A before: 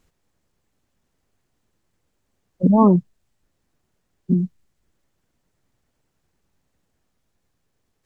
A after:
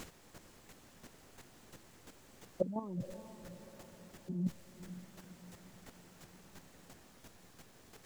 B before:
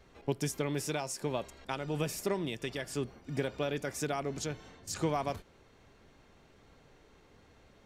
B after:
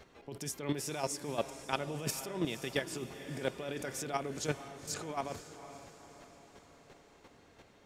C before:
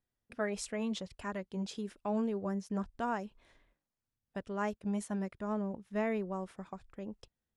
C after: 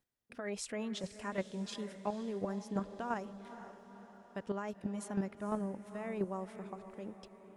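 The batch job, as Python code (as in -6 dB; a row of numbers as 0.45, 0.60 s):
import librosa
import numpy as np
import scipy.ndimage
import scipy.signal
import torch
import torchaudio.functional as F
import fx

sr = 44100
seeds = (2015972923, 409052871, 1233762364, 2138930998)

y = fx.low_shelf(x, sr, hz=85.0, db=-11.5)
y = fx.over_compress(y, sr, threshold_db=-36.0, ratio=-1.0)
y = fx.chopper(y, sr, hz=2.9, depth_pct=60, duty_pct=10)
y = fx.echo_diffused(y, sr, ms=490, feedback_pct=53, wet_db=-12.5)
y = y * 10.0 ** (5.5 / 20.0)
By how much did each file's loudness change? -26.5, -2.0, -3.0 LU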